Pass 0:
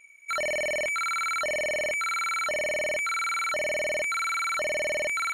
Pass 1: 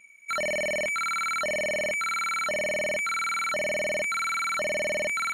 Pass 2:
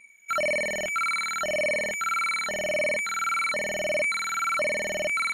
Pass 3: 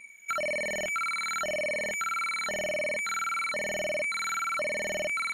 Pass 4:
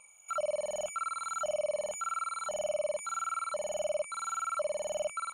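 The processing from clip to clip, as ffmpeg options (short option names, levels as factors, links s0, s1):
-af "equalizer=f=200:t=o:w=0.54:g=13.5"
-af "afftfilt=real='re*pow(10,8/40*sin(2*PI*(0.97*log(max(b,1)*sr/1024/100)/log(2)-(-1.7)*(pts-256)/sr)))':imag='im*pow(10,8/40*sin(2*PI*(0.97*log(max(b,1)*sr/1024/100)/log(2)-(-1.7)*(pts-256)/sr)))':win_size=1024:overlap=0.75"
-af "acompressor=threshold=0.0178:ratio=4,volume=1.58"
-af "alimiter=level_in=2.51:limit=0.0631:level=0:latency=1:release=26,volume=0.398,firequalizer=gain_entry='entry(100,0);entry(190,-6);entry(270,-18);entry(560,8);entry(1300,8);entry(1900,-26);entry(2700,2);entry(4400,-8);entry(8300,10);entry(12000,-6)':delay=0.05:min_phase=1,volume=0.794"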